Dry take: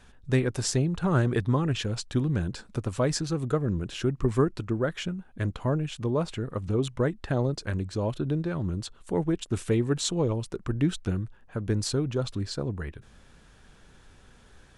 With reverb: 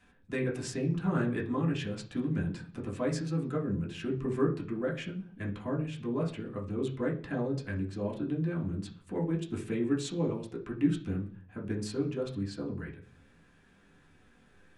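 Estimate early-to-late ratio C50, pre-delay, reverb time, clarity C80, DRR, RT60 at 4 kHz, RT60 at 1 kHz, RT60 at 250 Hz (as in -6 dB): 11.0 dB, 3 ms, 0.45 s, 16.5 dB, -2.5 dB, 0.55 s, 0.40 s, 0.70 s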